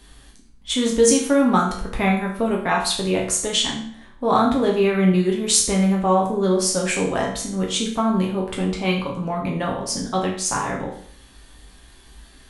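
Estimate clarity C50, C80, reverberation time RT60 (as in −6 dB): 5.5 dB, 9.5 dB, 0.55 s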